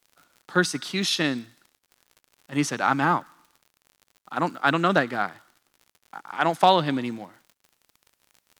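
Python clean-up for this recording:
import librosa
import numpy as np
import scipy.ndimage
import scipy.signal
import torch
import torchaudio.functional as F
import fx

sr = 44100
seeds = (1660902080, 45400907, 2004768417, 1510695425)

y = fx.fix_declip(x, sr, threshold_db=-6.5)
y = fx.fix_declick_ar(y, sr, threshold=6.5)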